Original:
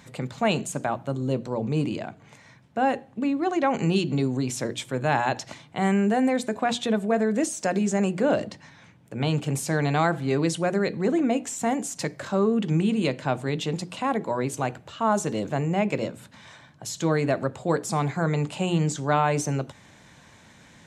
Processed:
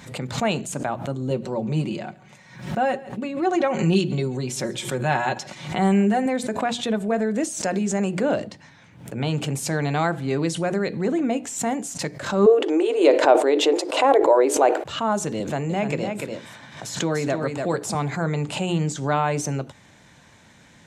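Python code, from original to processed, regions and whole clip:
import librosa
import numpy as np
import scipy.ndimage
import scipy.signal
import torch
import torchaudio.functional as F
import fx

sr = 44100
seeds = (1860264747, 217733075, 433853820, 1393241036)

y = fx.chain(x, sr, fx.comb(ms=5.4, depth=0.6),
    fx.echo_single(ms=138, db=-21.0), at=(1.3, 6.26))
y = fx.chain(y, sr, fx.brickwall_highpass(low_hz=270.0),
    fx.peak_eq(hz=540.0, db=13.0, octaves=2.1),
    fx.sustainer(db_per_s=99.0), at=(12.46, 14.84))
y = fx.chain(y, sr, fx.low_shelf(hz=75.0, db=-11.0),
    fx.echo_single(ms=294, db=-6.0),
    fx.band_squash(depth_pct=40), at=(15.4, 17.95))
y = fx.notch(y, sr, hz=1100.0, q=28.0)
y = fx.pre_swell(y, sr, db_per_s=93.0)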